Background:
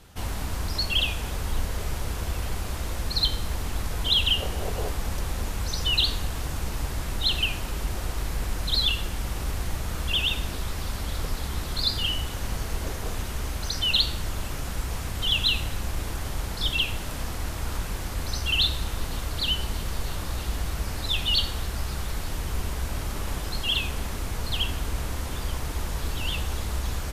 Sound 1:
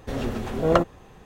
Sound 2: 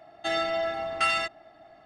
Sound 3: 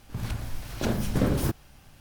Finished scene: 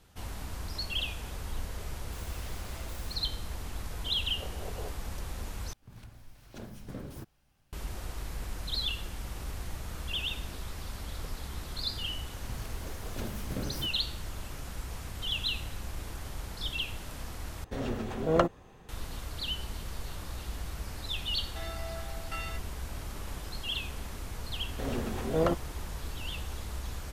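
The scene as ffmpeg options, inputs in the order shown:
-filter_complex "[2:a]asplit=2[s0][s1];[3:a]asplit=2[s2][s3];[1:a]asplit=2[s4][s5];[0:a]volume=0.355[s6];[s0]aeval=exprs='(mod(33.5*val(0)+1,2)-1)/33.5':c=same[s7];[s3]equalizer=f=13000:w=1.5:g=7[s8];[s5]alimiter=level_in=2.82:limit=0.891:release=50:level=0:latency=1[s9];[s6]asplit=3[s10][s11][s12];[s10]atrim=end=5.734[s13];[s2]atrim=end=2,asetpts=PTS-STARTPTS,volume=0.133[s14];[s11]atrim=start=7.726:end=17.644[s15];[s4]atrim=end=1.25,asetpts=PTS-STARTPTS,volume=0.531[s16];[s12]atrim=start=18.886[s17];[s7]atrim=end=1.85,asetpts=PTS-STARTPTS,volume=0.15,afade=t=in:d=0.004:c=hsin,afade=t=out:st=1.846:d=0.004:c=hsin,adelay=1880[s18];[s8]atrim=end=2,asetpts=PTS-STARTPTS,volume=0.237,afade=t=in:d=0.004:c=hsin,afade=t=out:st=1.996:d=0.004:c=hsin,adelay=12350[s19];[s1]atrim=end=1.85,asetpts=PTS-STARTPTS,volume=0.178,afade=t=in:d=0.004:c=hsin,afade=t=out:st=1.846:d=0.004:c=hsin,adelay=21310[s20];[s9]atrim=end=1.25,asetpts=PTS-STARTPTS,volume=0.188,afade=t=in:d=0.004:c=hsin,afade=t=out:st=1.246:d=0.004:c=hsin,adelay=24710[s21];[s13][s14]acrossfade=d=0.004:c1=hsin:c2=hsin[s22];[s22][s15]acrossfade=d=0.004:c1=hsin:c2=hsin[s23];[s23][s16]acrossfade=d=0.004:c1=hsin:c2=hsin[s24];[s24][s17]acrossfade=d=0.004:c1=hsin:c2=hsin[s25];[s25][s18][s19][s20][s21]amix=inputs=5:normalize=0"

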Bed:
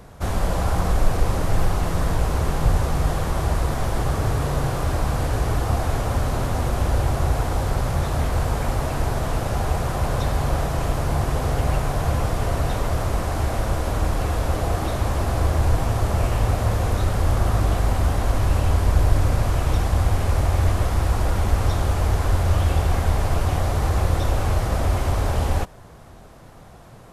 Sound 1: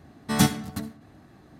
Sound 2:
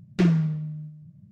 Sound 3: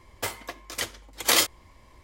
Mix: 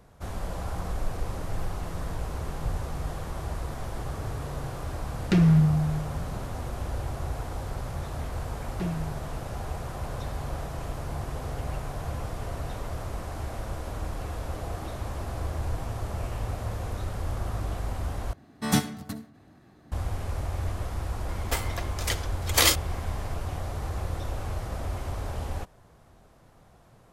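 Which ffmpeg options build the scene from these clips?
-filter_complex "[2:a]asplit=2[s0][s1];[0:a]volume=0.266[s2];[s0]alimiter=level_in=10.6:limit=0.891:release=50:level=0:latency=1[s3];[3:a]acompressor=mode=upward:threshold=0.0141:ratio=2.5:attack=10:release=26:knee=2.83:detection=peak[s4];[s2]asplit=2[s5][s6];[s5]atrim=end=18.334[s7];[1:a]atrim=end=1.59,asetpts=PTS-STARTPTS,volume=0.668[s8];[s6]atrim=start=19.916[s9];[s3]atrim=end=1.31,asetpts=PTS-STARTPTS,volume=0.237,afade=t=in:d=0.004:c=hsin,afade=t=out:st=1.306:d=0.004:c=hsin,adelay=226233S[s10];[s1]atrim=end=1.31,asetpts=PTS-STARTPTS,volume=0.251,afade=t=in:d=0.004:c=hsin,afade=t=out:st=1.306:d=0.004:c=hsin,adelay=8610[s11];[s4]atrim=end=2.03,asetpts=PTS-STARTPTS,afade=t=in:d=0.004:c=hsin,afade=t=out:st=2.026:d=0.004:c=hsin,adelay=21290[s12];[s7][s8]acrossfade=d=0.004:c1=hsin:c2=hsin[s13];[s13][s9]acrossfade=d=0.004:c1=hsin:c2=hsin[s14];[s14][s10][s11][s12]amix=inputs=4:normalize=0"

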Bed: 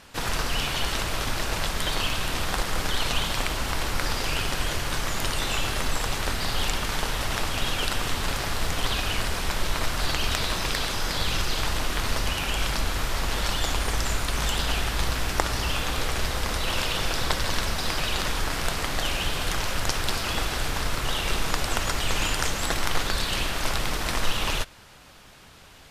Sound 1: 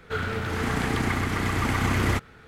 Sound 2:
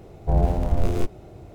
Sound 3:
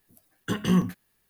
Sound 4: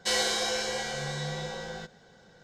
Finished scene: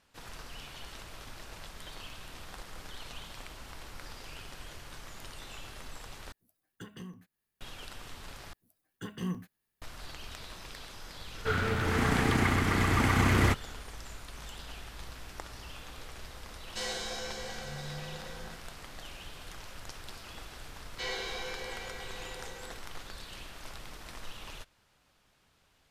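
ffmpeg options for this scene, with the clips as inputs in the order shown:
-filter_complex "[3:a]asplit=2[s0][s1];[4:a]asplit=2[s2][s3];[0:a]volume=0.112[s4];[s0]acompressor=threshold=0.0282:ratio=4:attack=77:release=311:knee=1:detection=rms[s5];[s2]bass=f=250:g=4,treble=f=4000:g=-1[s6];[s3]highpass=f=250:w=0.5412,highpass=f=250:w=1.3066,equalizer=f=420:t=q:w=4:g=8,equalizer=f=600:t=q:w=4:g=-7,equalizer=f=960:t=q:w=4:g=4,equalizer=f=2300:t=q:w=4:g=7,equalizer=f=5500:t=q:w=4:g=-6,lowpass=f=6000:w=0.5412,lowpass=f=6000:w=1.3066[s7];[s4]asplit=3[s8][s9][s10];[s8]atrim=end=6.324[s11];[s5]atrim=end=1.29,asetpts=PTS-STARTPTS,volume=0.178[s12];[s9]atrim=start=7.606:end=8.534[s13];[s1]atrim=end=1.29,asetpts=PTS-STARTPTS,volume=0.224[s14];[s10]atrim=start=9.816[s15];[1:a]atrim=end=2.47,asetpts=PTS-STARTPTS,volume=0.891,afade=t=in:d=0.004:c=hsin,afade=t=out:st=2.466:d=0.004:c=hsin,adelay=11350[s16];[s6]atrim=end=2.43,asetpts=PTS-STARTPTS,volume=0.335,afade=t=in:d=0.004:c=hsin,afade=t=out:st=2.426:d=0.004:c=hsin,adelay=16700[s17];[s7]atrim=end=2.43,asetpts=PTS-STARTPTS,volume=0.316,afade=t=in:d=0.004:c=hsin,afade=t=out:st=2.426:d=0.004:c=hsin,adelay=20930[s18];[s11][s12]acrossfade=d=0.004:c1=hsin:c2=hsin[s19];[s19][s13]acrossfade=d=0.004:c1=hsin:c2=hsin[s20];[s20][s14]acrossfade=d=0.004:c1=hsin:c2=hsin[s21];[s21][s15]acrossfade=d=0.004:c1=hsin:c2=hsin[s22];[s22][s16][s17][s18]amix=inputs=4:normalize=0"

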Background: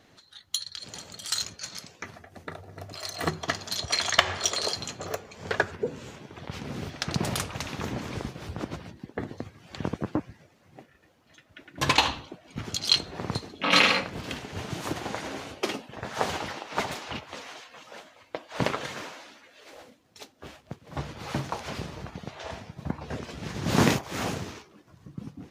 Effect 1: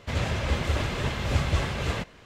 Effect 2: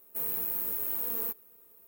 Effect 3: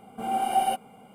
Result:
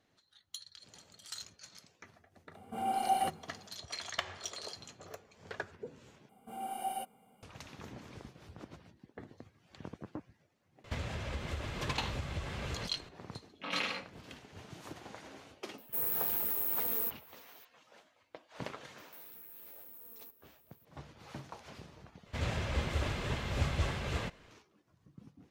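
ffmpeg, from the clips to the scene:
-filter_complex "[3:a]asplit=2[s0][s1];[1:a]asplit=2[s2][s3];[2:a]asplit=2[s4][s5];[0:a]volume=0.168[s6];[s1]highshelf=f=9800:g=11.5[s7];[s2]acompressor=threshold=0.0112:ratio=5:attack=64:release=168:knee=1:detection=peak[s8];[s5]acompressor=threshold=0.0126:ratio=6:attack=0.21:release=24:knee=1:detection=rms[s9];[s6]asplit=3[s10][s11][s12];[s10]atrim=end=6.294[s13];[s7]atrim=end=1.14,asetpts=PTS-STARTPTS,volume=0.2[s14];[s11]atrim=start=7.426:end=22.264[s15];[s3]atrim=end=2.25,asetpts=PTS-STARTPTS,volume=0.422[s16];[s12]atrim=start=24.506[s17];[s0]atrim=end=1.14,asetpts=PTS-STARTPTS,volume=0.473,afade=t=in:d=0.004:c=hsin,afade=t=out:st=1.136:d=0.004:c=hsin,adelay=2540[s18];[s8]atrim=end=2.25,asetpts=PTS-STARTPTS,volume=0.794,afade=t=in:d=0.004:c=hsin,afade=t=out:st=2.246:d=0.004:c=hsin,adelay=10840[s19];[s4]atrim=end=1.87,asetpts=PTS-STARTPTS,volume=0.891,afade=t=in:d=0.004:c=hsin,afade=t=out:st=1.866:d=0.004:c=hsin,adelay=15780[s20];[s9]atrim=end=1.87,asetpts=PTS-STARTPTS,volume=0.355,afade=t=in:d=0.004:c=hsin,afade=t=out:st=1.866:d=0.004:c=hsin,adelay=18980[s21];[s13][s14]acrossfade=d=0.004:c1=hsin:c2=hsin[s22];[s22][s15]acrossfade=d=0.004:c1=hsin:c2=hsin[s23];[s23][s16]acrossfade=d=0.004:c1=hsin:c2=hsin[s24];[s24][s17]acrossfade=d=0.004:c1=hsin:c2=hsin[s25];[s25][s18][s19][s20][s21]amix=inputs=5:normalize=0"

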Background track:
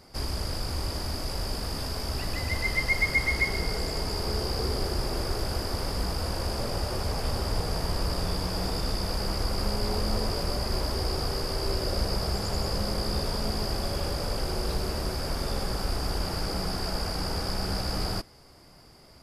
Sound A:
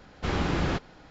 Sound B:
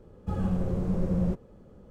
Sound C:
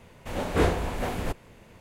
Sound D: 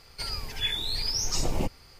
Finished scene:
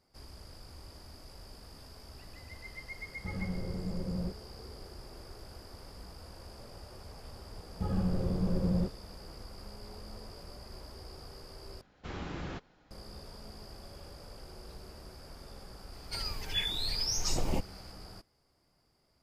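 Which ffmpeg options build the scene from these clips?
-filter_complex "[2:a]asplit=2[s0][s1];[0:a]volume=0.112[s2];[4:a]acontrast=78[s3];[s2]asplit=2[s4][s5];[s4]atrim=end=11.814[s6];[1:a]atrim=end=1.1,asetpts=PTS-STARTPTS,volume=0.224[s7];[s5]atrim=start=12.906[s8];[s0]atrim=end=1.9,asetpts=PTS-STARTPTS,volume=0.355,afade=t=in:d=0.004:c=hsin,afade=t=out:st=1.896:d=0.004:c=hsin,adelay=2970[s9];[s1]atrim=end=1.9,asetpts=PTS-STARTPTS,volume=0.708,afade=t=in:d=0.004:c=hsin,afade=t=out:st=1.896:d=0.004:c=hsin,adelay=7530[s10];[s3]atrim=end=1.99,asetpts=PTS-STARTPTS,volume=0.299,afade=t=in:d=0.004:c=hsin,afade=t=out:st=1.986:d=0.004:c=hsin,adelay=15930[s11];[s6][s7]acrossfade=d=0.004:c1=hsin:c2=hsin[s12];[s12][s8]acrossfade=d=0.004:c1=hsin:c2=hsin[s13];[s13][s9][s10][s11]amix=inputs=4:normalize=0"

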